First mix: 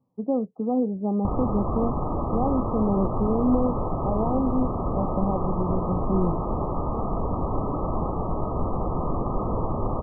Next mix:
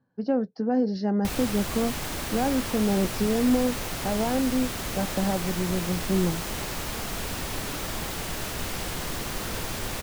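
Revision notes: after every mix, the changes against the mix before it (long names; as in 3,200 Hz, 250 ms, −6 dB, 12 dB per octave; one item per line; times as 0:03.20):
background −8.0 dB
master: remove linear-phase brick-wall low-pass 1,300 Hz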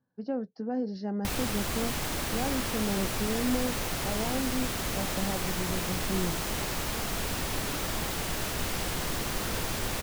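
speech −7.5 dB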